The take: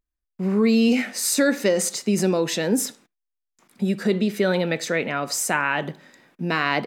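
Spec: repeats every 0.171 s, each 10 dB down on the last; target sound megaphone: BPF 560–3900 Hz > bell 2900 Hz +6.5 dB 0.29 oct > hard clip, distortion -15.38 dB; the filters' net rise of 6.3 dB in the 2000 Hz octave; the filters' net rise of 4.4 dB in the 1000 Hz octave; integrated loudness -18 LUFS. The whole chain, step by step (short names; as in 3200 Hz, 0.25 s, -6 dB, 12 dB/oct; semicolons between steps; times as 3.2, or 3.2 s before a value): BPF 560–3900 Hz; bell 1000 Hz +4.5 dB; bell 2000 Hz +6 dB; bell 2900 Hz +6.5 dB 0.29 oct; feedback echo 0.171 s, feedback 32%, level -10 dB; hard clip -10.5 dBFS; gain +4.5 dB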